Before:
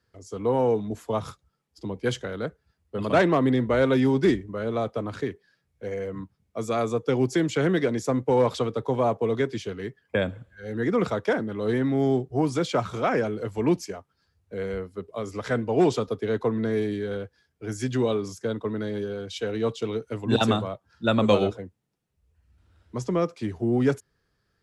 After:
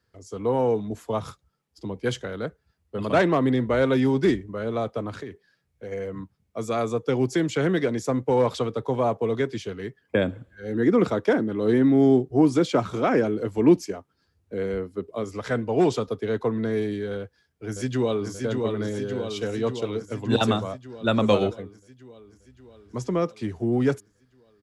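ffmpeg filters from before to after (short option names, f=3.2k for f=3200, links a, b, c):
-filter_complex "[0:a]asettb=1/sr,asplit=3[a][b][c];[a]atrim=end=5.164[d];[b]atrim=start=5.16:end=5.92,asetpts=PTS-STARTPTS,afade=t=in:d=0.004:c=qsin,afade=t=out:st=0.756:d=0.004:c=qsin,acompressor=threshold=-32dB:ratio=4:attack=3.2:release=140:knee=1:detection=peak[e];[c]atrim=start=5.916[f];[d][e]acrossfade=d=0.004:c1=hsin:c2=qsin[g];[g][f]acrossfade=d=0.004:c1=qsin:c2=hsin,asettb=1/sr,asplit=3[h][i][j];[h]atrim=end=10.014[k];[i]atrim=start=10.01:end=15.24,asetpts=PTS-STARTPTS,afade=t=in:d=0.004:c=qsin,afade=t=out:st=5.226:d=0.004:c=qsin,equalizer=f=300:w=1.4:g=7.5[l];[j]atrim=start=15.236[m];[k][l]acrossfade=d=0.004:c1=hsin:c2=qsin[n];[n][m]acrossfade=d=0.004:c1=qsin:c2=hsin,asplit=2[o][p];[p]afade=t=in:st=17.18:d=0.01,afade=t=out:st=18.31:d=0.01,aecho=0:1:580|1160|1740|2320|2900|3480|4060|4640|5220|5800|6380|6960:0.595662|0.416964|0.291874|0.204312|0.143018|0.100113|0.0700791|0.0490553|0.0343387|0.0240371|0.016826|0.0117782[q];[o][q]amix=inputs=2:normalize=0"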